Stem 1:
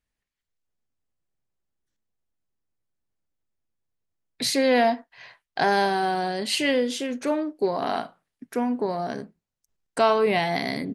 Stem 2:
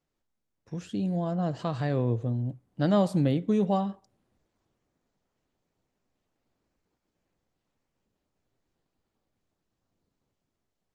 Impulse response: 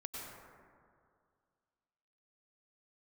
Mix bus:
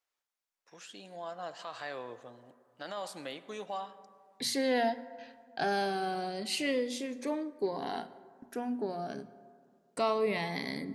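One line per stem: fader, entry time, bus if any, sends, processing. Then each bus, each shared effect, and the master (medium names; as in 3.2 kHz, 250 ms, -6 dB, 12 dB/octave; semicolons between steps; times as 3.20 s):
-8.5 dB, 0.00 s, send -14 dB, gate with hold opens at -39 dBFS; hum notches 60/120/180/240 Hz; Shepard-style phaser falling 0.3 Hz
-1.0 dB, 0.00 s, send -12.5 dB, high-pass 930 Hz 12 dB/octave; peak limiter -29 dBFS, peak gain reduction 8.5 dB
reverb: on, RT60 2.2 s, pre-delay 88 ms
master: none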